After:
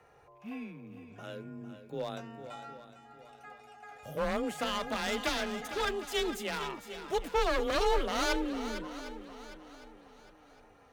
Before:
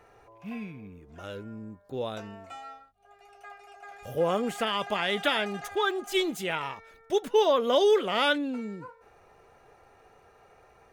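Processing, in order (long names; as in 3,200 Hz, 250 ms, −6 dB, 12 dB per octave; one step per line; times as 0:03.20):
wavefolder on the positive side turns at −25 dBFS
frequency shifter +24 Hz
feedback echo with a long and a short gap by turns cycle 757 ms, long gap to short 1.5 to 1, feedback 33%, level −11 dB
level −4 dB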